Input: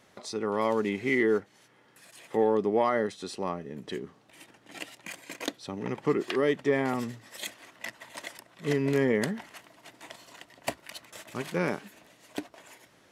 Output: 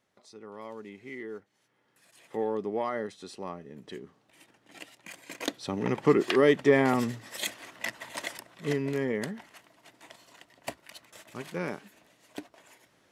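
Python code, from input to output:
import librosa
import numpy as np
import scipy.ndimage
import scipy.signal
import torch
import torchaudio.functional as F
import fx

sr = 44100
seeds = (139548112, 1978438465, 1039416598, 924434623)

y = fx.gain(x, sr, db=fx.line((1.31, -15.5), (2.29, -6.0), (5.0, -6.0), (5.71, 4.5), (8.36, 4.5), (8.92, -5.0)))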